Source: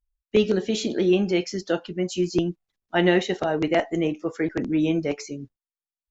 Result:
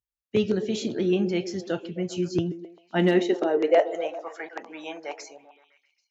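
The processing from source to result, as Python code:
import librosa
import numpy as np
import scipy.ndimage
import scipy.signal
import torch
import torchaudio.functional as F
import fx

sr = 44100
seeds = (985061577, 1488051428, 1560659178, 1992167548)

y = np.clip(x, -10.0 ** (-9.5 / 20.0), 10.0 ** (-9.5 / 20.0))
y = fx.filter_sweep_highpass(y, sr, from_hz=110.0, to_hz=830.0, start_s=2.52, end_s=4.14, q=4.0)
y = fx.echo_stepped(y, sr, ms=131, hz=320.0, octaves=0.7, feedback_pct=70, wet_db=-9.0)
y = y * 10.0 ** (-5.0 / 20.0)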